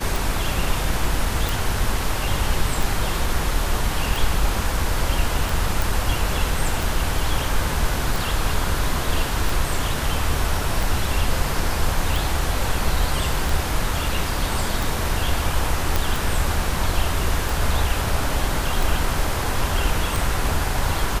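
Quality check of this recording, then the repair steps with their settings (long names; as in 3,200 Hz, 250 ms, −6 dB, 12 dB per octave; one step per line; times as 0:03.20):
scratch tick 45 rpm
0:01.49: click
0:05.82: click
0:15.96: click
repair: click removal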